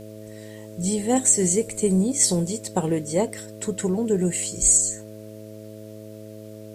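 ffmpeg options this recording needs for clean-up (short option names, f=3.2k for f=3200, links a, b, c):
-af "bandreject=f=107.3:t=h:w=4,bandreject=f=214.6:t=h:w=4,bandreject=f=321.9:t=h:w=4,bandreject=f=429.2:t=h:w=4,bandreject=f=536.5:t=h:w=4,bandreject=f=643.8:t=h:w=4,agate=range=-21dB:threshold=-32dB"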